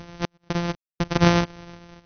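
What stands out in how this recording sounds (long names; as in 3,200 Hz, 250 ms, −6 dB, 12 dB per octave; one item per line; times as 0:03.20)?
a buzz of ramps at a fixed pitch in blocks of 256 samples
sample-and-hold tremolo 4 Hz, depth 100%
AC-3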